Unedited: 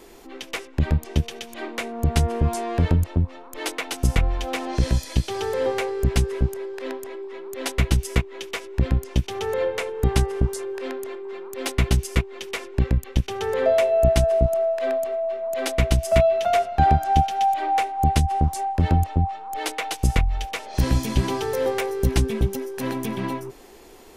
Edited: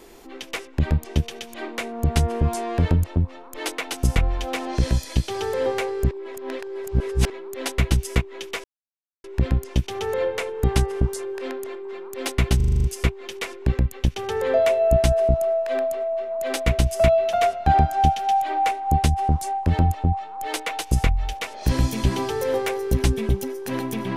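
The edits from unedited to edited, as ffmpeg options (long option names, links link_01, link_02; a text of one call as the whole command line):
ffmpeg -i in.wav -filter_complex "[0:a]asplit=11[link_01][link_02][link_03][link_04][link_05][link_06][link_07][link_08][link_09][link_10][link_11];[link_01]atrim=end=6.112[link_12];[link_02]atrim=start=6.108:end=7.302,asetpts=PTS-STARTPTS,areverse[link_13];[link_03]atrim=start=7.298:end=8.64,asetpts=PTS-STARTPTS,afade=type=out:start_time=1.338:duration=0.004:curve=hsin,apad=pad_dur=0.6[link_14];[link_04]atrim=start=8.64:end=12.002,asetpts=PTS-STARTPTS,afade=type=in:duration=0.004:curve=hsin[link_15];[link_05]atrim=start=11.958:end=12.002[link_16];[link_06]atrim=start=11.958:end=12.002[link_17];[link_07]atrim=start=11.958:end=12.002[link_18];[link_08]atrim=start=11.958:end=12.002[link_19];[link_09]atrim=start=11.958:end=12.002[link_20];[link_10]atrim=start=11.958:end=12.002[link_21];[link_11]atrim=start=11.958[link_22];[link_12][link_13]acrossfade=duration=0.004:curve1=hsin:curve2=hsin[link_23];[link_14][link_15]concat=n=2:v=0:a=1[link_24];[link_23][link_24]acrossfade=duration=0.004:curve1=hsin:curve2=hsin[link_25];[link_25][link_16]acrossfade=duration=0.004:curve1=hsin:curve2=hsin[link_26];[link_26][link_17]acrossfade=duration=0.004:curve1=hsin:curve2=hsin[link_27];[link_27][link_18]acrossfade=duration=0.004:curve1=hsin:curve2=hsin[link_28];[link_28][link_19]acrossfade=duration=0.004:curve1=hsin:curve2=hsin[link_29];[link_29][link_20]acrossfade=duration=0.004:curve1=hsin:curve2=hsin[link_30];[link_30][link_21]acrossfade=duration=0.004:curve1=hsin:curve2=hsin[link_31];[link_31][link_22]acrossfade=duration=0.004:curve1=hsin:curve2=hsin" out.wav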